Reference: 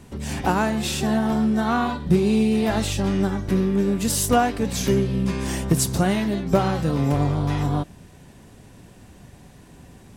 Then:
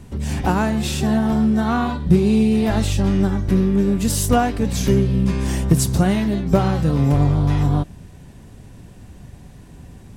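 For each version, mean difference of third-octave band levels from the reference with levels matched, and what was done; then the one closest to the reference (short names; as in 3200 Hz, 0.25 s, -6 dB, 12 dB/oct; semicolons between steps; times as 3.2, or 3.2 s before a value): 2.5 dB: low shelf 160 Hz +10 dB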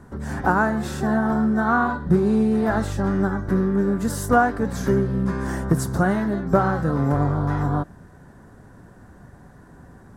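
4.5 dB: resonant high shelf 2000 Hz -9 dB, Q 3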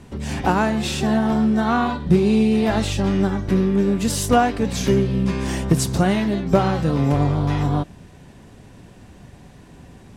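1.5 dB: high shelf 9000 Hz -11.5 dB; gain +2.5 dB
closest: third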